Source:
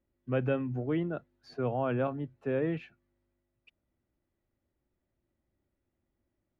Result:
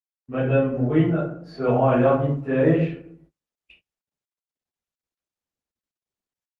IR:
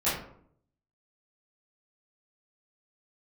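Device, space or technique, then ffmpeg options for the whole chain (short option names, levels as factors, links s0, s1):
speakerphone in a meeting room: -filter_complex "[1:a]atrim=start_sample=2205[s0];[0:a][s0]afir=irnorm=-1:irlink=0,dynaudnorm=f=430:g=3:m=2.51,agate=range=0.0141:threshold=0.00398:ratio=16:detection=peak,volume=0.596" -ar 48000 -c:a libopus -b:a 24k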